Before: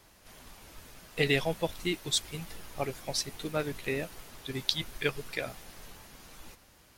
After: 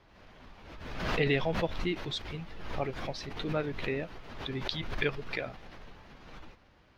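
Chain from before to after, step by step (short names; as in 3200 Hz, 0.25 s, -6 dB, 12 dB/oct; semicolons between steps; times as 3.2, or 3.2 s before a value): air absorption 260 m; backwards sustainer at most 46 dB/s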